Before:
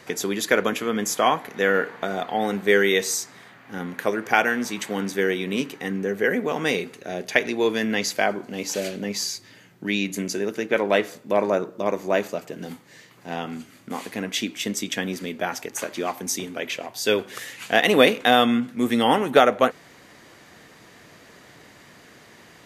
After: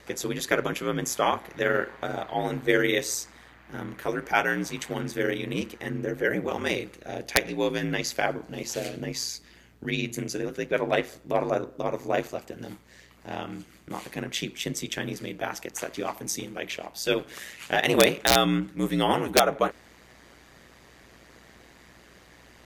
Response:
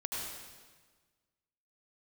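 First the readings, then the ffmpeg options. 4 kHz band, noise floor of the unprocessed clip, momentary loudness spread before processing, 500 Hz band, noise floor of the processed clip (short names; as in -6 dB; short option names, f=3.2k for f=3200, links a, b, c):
-3.0 dB, -50 dBFS, 15 LU, -5.0 dB, -54 dBFS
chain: -af "aeval=exprs='val(0)*sin(2*PI*60*n/s)':c=same,aeval=exprs='(mod(1.58*val(0)+1,2)-1)/1.58':c=same,aeval=exprs='val(0)+0.00112*(sin(2*PI*60*n/s)+sin(2*PI*2*60*n/s)/2+sin(2*PI*3*60*n/s)/3+sin(2*PI*4*60*n/s)/4+sin(2*PI*5*60*n/s)/5)':c=same,volume=-1.5dB"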